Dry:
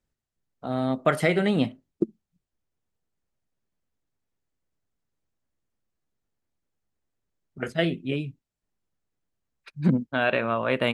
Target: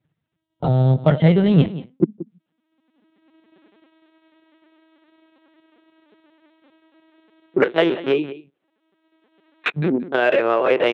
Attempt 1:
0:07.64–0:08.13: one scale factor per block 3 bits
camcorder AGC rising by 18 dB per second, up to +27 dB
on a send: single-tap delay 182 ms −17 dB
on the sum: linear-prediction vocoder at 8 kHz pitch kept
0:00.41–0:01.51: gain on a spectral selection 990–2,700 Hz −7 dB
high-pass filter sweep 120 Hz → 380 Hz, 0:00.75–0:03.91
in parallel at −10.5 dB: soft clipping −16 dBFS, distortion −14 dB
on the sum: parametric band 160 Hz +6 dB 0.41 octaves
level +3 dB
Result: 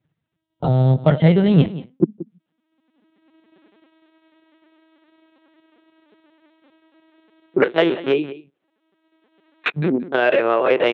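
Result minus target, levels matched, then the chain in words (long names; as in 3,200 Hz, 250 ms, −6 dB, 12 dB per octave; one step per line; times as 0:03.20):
soft clipping: distortion −6 dB
0:07.64–0:08.13: one scale factor per block 3 bits
camcorder AGC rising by 18 dB per second, up to +27 dB
on a send: single-tap delay 182 ms −17 dB
on the sum: linear-prediction vocoder at 8 kHz pitch kept
0:00.41–0:01.51: gain on a spectral selection 990–2,700 Hz −7 dB
high-pass filter sweep 120 Hz → 380 Hz, 0:00.75–0:03.91
in parallel at −10.5 dB: soft clipping −23 dBFS, distortion −8 dB
on the sum: parametric band 160 Hz +6 dB 0.41 octaves
level +3 dB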